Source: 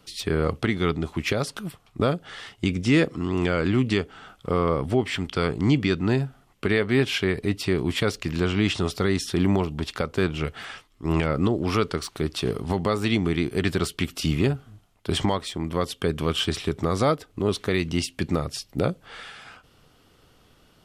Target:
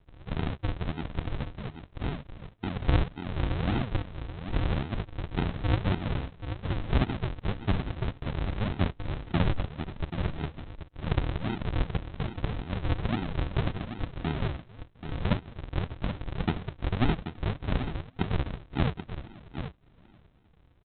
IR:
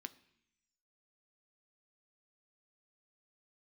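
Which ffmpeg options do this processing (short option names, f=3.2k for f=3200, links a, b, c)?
-af "aresample=8000,acrusher=samples=27:mix=1:aa=0.000001:lfo=1:lforange=27:lforate=1.8,aresample=44100,tremolo=f=1.7:d=0.53,aecho=1:1:783:0.335,volume=-3dB"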